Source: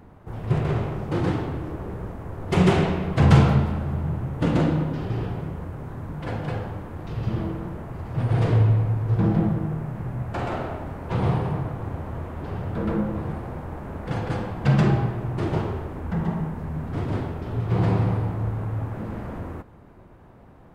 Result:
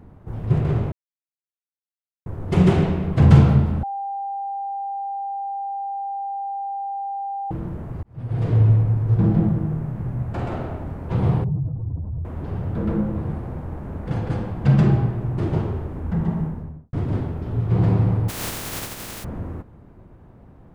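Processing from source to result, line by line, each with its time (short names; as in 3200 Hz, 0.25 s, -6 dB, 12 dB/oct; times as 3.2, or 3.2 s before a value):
0.92–2.26 mute
3.83–7.51 bleep 794 Hz -22.5 dBFS
8.03–8.7 fade in
11.44–12.25 spectral contrast raised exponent 2.1
16.41–16.93 studio fade out
18.28–19.23 spectral contrast lowered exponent 0.13
whole clip: low shelf 410 Hz +9 dB; gain -4.5 dB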